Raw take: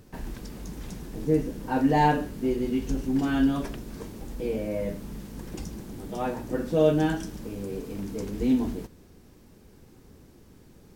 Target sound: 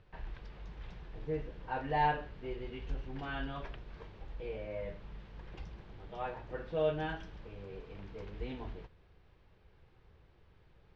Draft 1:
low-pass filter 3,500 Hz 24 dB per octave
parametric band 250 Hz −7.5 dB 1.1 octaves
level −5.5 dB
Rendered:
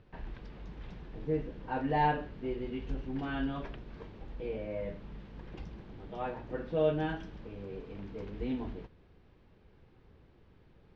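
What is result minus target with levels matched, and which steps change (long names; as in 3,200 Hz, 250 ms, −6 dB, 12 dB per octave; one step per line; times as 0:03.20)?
250 Hz band +5.0 dB
change: parametric band 250 Hz −18.5 dB 1.1 octaves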